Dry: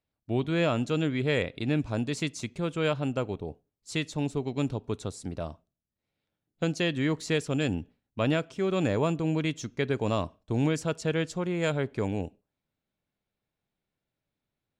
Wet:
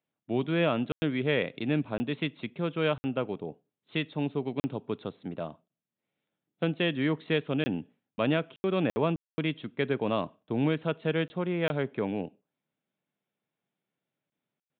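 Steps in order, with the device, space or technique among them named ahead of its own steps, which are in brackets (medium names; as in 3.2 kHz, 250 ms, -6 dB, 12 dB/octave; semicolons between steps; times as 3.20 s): call with lost packets (high-pass 140 Hz 24 dB/octave; resampled via 8 kHz; lost packets of 20 ms bursts)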